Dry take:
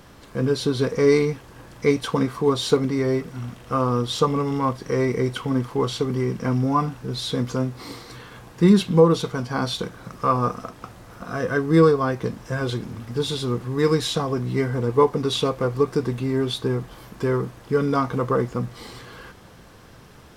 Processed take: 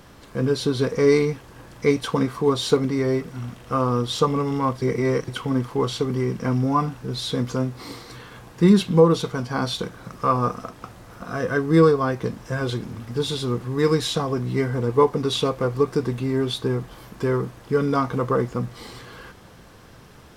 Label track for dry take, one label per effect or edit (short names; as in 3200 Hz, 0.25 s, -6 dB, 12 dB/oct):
4.820000	5.280000	reverse